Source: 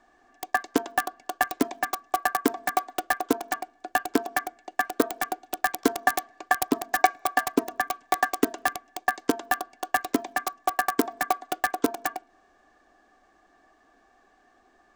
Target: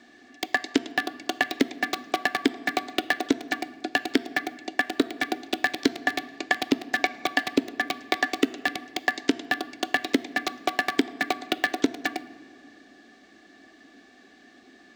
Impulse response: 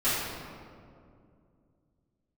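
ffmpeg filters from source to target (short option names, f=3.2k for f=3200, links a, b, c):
-filter_complex "[0:a]bandreject=f=1.6k:w=26,acrossover=split=4200[a][b];[b]acompressor=threshold=-38dB:ratio=4:attack=1:release=60[c];[a][c]amix=inputs=2:normalize=0,equalizer=f=250:t=o:w=1:g=11,equalizer=f=1k:t=o:w=1:g=-11,equalizer=f=2k:t=o:w=1:g=7,equalizer=f=4k:t=o:w=1:g=10,acompressor=threshold=-26dB:ratio=6,highpass=86,asplit=2[d][e];[1:a]atrim=start_sample=2205[f];[e][f]afir=irnorm=-1:irlink=0,volume=-27.5dB[g];[d][g]amix=inputs=2:normalize=0,volume=5.5dB"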